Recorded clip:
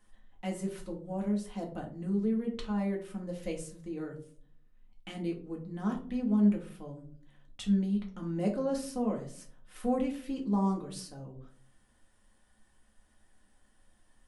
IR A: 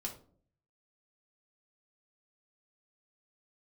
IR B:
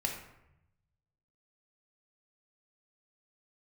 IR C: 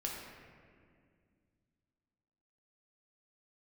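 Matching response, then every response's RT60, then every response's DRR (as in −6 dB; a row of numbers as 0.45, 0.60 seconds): A; 0.50, 0.85, 2.1 seconds; −0.5, 1.0, −2.5 decibels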